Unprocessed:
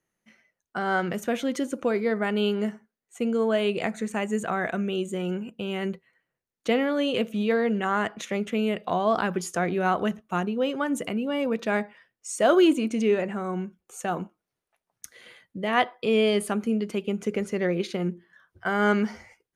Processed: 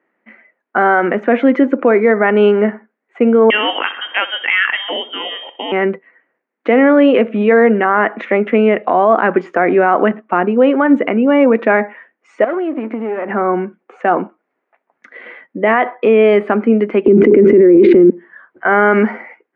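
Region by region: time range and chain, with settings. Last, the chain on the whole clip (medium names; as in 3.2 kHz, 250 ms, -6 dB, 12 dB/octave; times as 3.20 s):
3.50–5.72 s: feedback delay 63 ms, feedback 51%, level -16 dB + frequency inversion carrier 3.4 kHz
12.44–13.30 s: partial rectifier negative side -12 dB + compression 8:1, threshold -30 dBFS + distance through air 150 m
17.06–18.10 s: resonant low shelf 530 Hz +13 dB, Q 3 + level flattener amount 70%
whole clip: elliptic band-pass 250–2100 Hz, stop band 80 dB; loudness maximiser +18.5 dB; trim -1 dB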